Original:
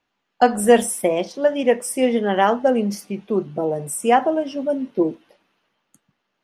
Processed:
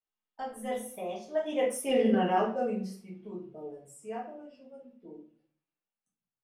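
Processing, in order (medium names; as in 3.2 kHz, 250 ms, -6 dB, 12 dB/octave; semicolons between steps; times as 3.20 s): Doppler pass-by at 1.92 s, 22 m/s, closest 1.1 m; reverberation RT60 0.45 s, pre-delay 5 ms, DRR -5.5 dB; reverse; compression 16:1, threshold -23 dBFS, peak gain reduction 15.5 dB; reverse; trim +1.5 dB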